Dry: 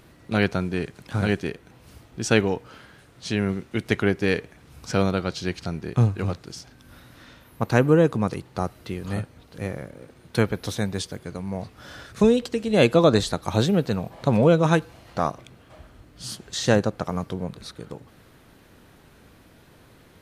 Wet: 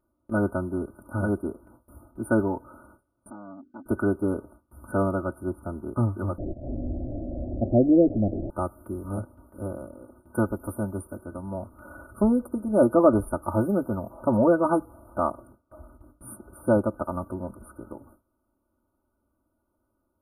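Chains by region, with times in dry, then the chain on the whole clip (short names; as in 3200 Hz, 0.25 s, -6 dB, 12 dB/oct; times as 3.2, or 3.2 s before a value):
3.3–3.86 vowel filter i + low shelf 110 Hz +7.5 dB + core saturation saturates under 1400 Hz
6.38–8.5 delta modulation 64 kbps, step -25 dBFS + Chebyshev low-pass 780 Hz, order 10 + tilt -1.5 dB/oct
whole clip: FFT band-reject 1500–9000 Hz; gate with hold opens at -40 dBFS; comb 3.3 ms, depth 98%; gain -3.5 dB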